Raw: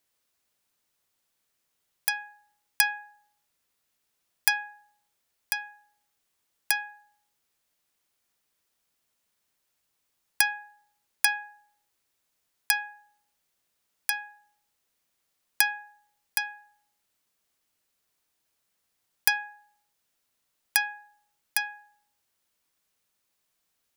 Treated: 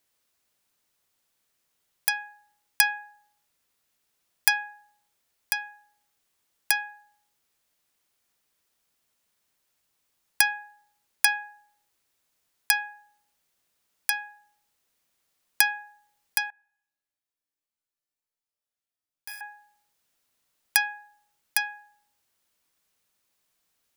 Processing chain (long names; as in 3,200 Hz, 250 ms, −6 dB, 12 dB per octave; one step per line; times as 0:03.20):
0:16.50–0:19.41: resonators tuned to a chord G2 minor, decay 0.78 s
level +2 dB